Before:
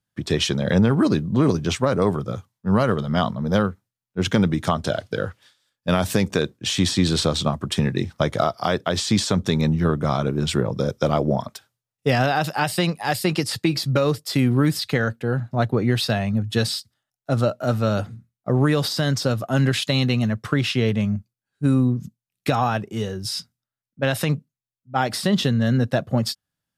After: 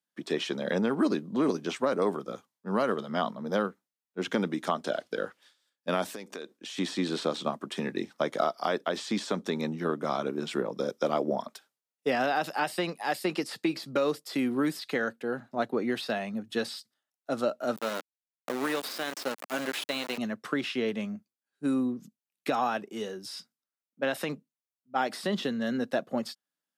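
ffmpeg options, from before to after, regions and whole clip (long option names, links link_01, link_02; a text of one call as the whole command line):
ffmpeg -i in.wav -filter_complex "[0:a]asettb=1/sr,asplit=3[link_01][link_02][link_03];[link_01]atrim=end=6.094[link_04];[link_02]atrim=start=6.09:end=6.78,asetpts=PTS-STARTPTS,afade=type=in:duration=0.004:curve=qsin,afade=type=out:start_time=0.686:duration=0.004:curve=qsin,equalizer=frequency=140:width_type=o:width=1.1:gain=-5.5,acompressor=threshold=-30dB:ratio=4:attack=3.2:release=140:knee=1:detection=peak[link_05];[link_03]atrim=start=6.776[link_06];[link_04][link_05]acrossfade=duration=0.004:curve1=hsin:curve2=qsin[link_07];[link_07][link_06]acrossfade=duration=0.004:curve1=qsin:curve2=hsin,asettb=1/sr,asplit=3[link_08][link_09][link_10];[link_08]atrim=end=17.764[link_11];[link_09]atrim=start=17.76:end=20.18,asetpts=PTS-STARTPTS,afade=type=in:duration=0.004:curve=qsin,afade=type=out:start_time=2.416:duration=0.004:curve=qsin,aemphasis=mode=production:type=bsi,aeval=exprs='val(0)*gte(abs(val(0)),0.0794)':channel_layout=same[link_12];[link_10]atrim=start=20.176[link_13];[link_11][link_12]acrossfade=duration=0.004:curve1=hsin:curve2=qsin[link_14];[link_14][link_13]acrossfade=duration=0.004:curve1=qsin:curve2=hsin,highpass=frequency=230:width=0.5412,highpass=frequency=230:width=1.3066,acrossover=split=2700[link_15][link_16];[link_16]acompressor=threshold=-33dB:ratio=4:attack=1:release=60[link_17];[link_15][link_17]amix=inputs=2:normalize=0,volume=-6dB" out.wav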